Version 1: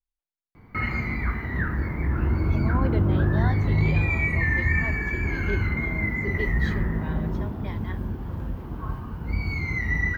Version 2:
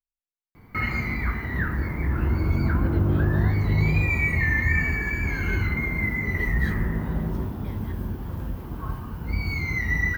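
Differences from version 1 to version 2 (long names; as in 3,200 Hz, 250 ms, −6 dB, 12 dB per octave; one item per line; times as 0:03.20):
speech −9.0 dB
master: remove low-pass filter 3,300 Hz 6 dB per octave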